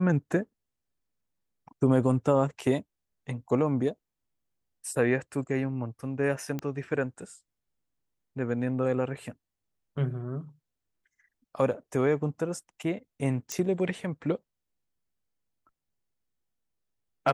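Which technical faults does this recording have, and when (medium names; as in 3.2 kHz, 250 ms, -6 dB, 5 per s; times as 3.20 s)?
6.59 s: pop -20 dBFS
13.52 s: pop -17 dBFS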